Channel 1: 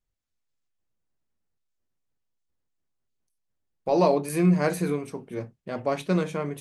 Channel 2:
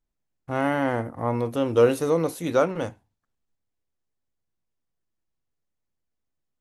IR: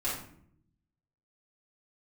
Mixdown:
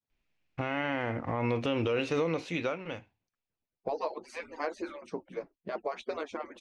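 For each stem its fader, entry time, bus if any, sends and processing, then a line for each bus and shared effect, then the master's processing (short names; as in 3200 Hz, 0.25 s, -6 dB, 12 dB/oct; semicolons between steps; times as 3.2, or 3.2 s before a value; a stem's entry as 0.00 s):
-3.5 dB, 0.00 s, no send, median-filter separation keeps percussive; bell 550 Hz +5 dB 2.5 oct; compressor 5:1, threshold -27 dBFS, peak gain reduction 11.5 dB
+2.5 dB, 0.10 s, no send, bell 2500 Hz +14.5 dB 0.77 oct; compressor 4:1, threshold -26 dBFS, peak gain reduction 12 dB; auto duck -22 dB, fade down 1.70 s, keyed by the first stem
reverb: off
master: LPF 5800 Hz 24 dB/oct; limiter -19.5 dBFS, peak gain reduction 8.5 dB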